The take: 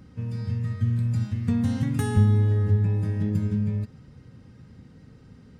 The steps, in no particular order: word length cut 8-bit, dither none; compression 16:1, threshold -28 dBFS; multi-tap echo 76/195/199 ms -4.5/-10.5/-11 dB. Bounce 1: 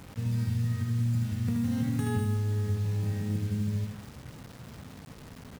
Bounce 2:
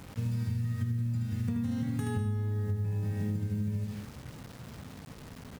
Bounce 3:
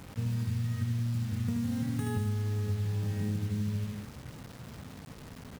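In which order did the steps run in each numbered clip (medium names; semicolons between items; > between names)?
compression > multi-tap echo > word length cut; multi-tap echo > word length cut > compression; multi-tap echo > compression > word length cut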